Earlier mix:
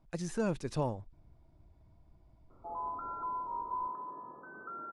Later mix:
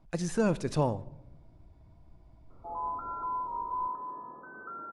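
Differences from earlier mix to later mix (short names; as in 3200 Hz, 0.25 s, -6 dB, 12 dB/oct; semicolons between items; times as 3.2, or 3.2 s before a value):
speech +4.5 dB; reverb: on, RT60 0.90 s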